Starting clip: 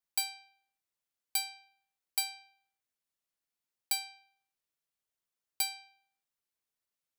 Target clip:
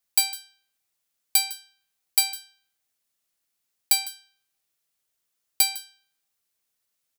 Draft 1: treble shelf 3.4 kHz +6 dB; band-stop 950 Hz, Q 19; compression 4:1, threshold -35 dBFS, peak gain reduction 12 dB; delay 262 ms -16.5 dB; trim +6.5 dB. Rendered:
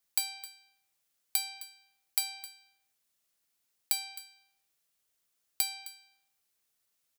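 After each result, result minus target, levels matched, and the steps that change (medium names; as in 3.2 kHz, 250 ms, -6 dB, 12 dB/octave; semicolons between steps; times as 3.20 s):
echo 107 ms late; compression: peak gain reduction +12 dB
change: delay 155 ms -16.5 dB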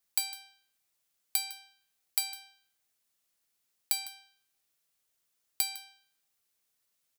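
compression: peak gain reduction +12 dB
remove: compression 4:1, threshold -35 dBFS, peak gain reduction 12 dB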